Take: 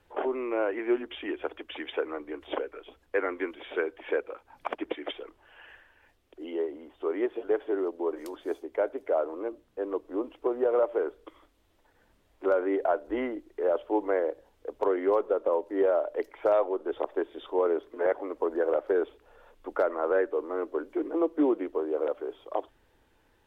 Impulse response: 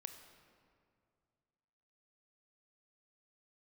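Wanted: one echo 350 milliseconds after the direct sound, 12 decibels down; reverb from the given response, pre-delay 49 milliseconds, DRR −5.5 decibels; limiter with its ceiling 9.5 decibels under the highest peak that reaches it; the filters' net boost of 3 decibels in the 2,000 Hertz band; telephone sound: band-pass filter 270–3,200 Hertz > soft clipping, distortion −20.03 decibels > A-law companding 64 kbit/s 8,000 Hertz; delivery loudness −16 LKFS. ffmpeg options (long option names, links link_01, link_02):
-filter_complex "[0:a]equalizer=frequency=2000:width_type=o:gain=4.5,alimiter=limit=-22dB:level=0:latency=1,aecho=1:1:350:0.251,asplit=2[link_01][link_02];[1:a]atrim=start_sample=2205,adelay=49[link_03];[link_02][link_03]afir=irnorm=-1:irlink=0,volume=10dB[link_04];[link_01][link_04]amix=inputs=2:normalize=0,highpass=270,lowpass=3200,asoftclip=threshold=-17dB,volume=12.5dB" -ar 8000 -c:a pcm_alaw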